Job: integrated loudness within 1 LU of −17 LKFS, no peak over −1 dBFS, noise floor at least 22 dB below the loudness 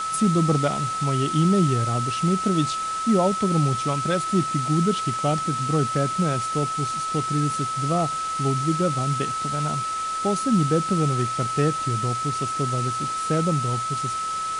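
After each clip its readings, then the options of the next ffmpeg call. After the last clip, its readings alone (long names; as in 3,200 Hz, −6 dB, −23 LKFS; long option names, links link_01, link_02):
interfering tone 1,300 Hz; level of the tone −25 dBFS; background noise floor −28 dBFS; target noise floor −45 dBFS; integrated loudness −23.0 LKFS; sample peak −9.0 dBFS; target loudness −17.0 LKFS
→ -af "bandreject=frequency=1300:width=30"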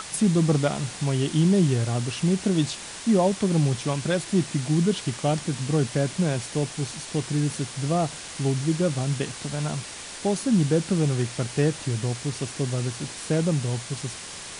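interfering tone none found; background noise floor −38 dBFS; target noise floor −47 dBFS
→ -af "afftdn=noise_reduction=9:noise_floor=-38"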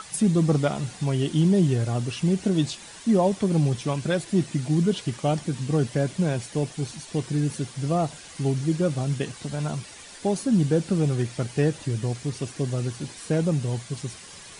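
background noise floor −44 dBFS; target noise floor −48 dBFS
→ -af "afftdn=noise_reduction=6:noise_floor=-44"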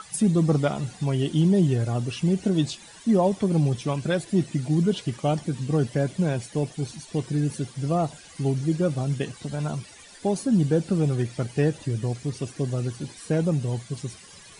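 background noise floor −48 dBFS; integrated loudness −25.5 LKFS; sample peak −10.5 dBFS; target loudness −17.0 LKFS
→ -af "volume=8.5dB"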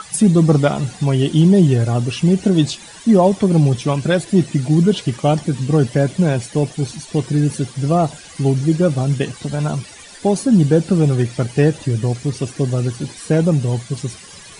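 integrated loudness −17.0 LKFS; sample peak −2.0 dBFS; background noise floor −39 dBFS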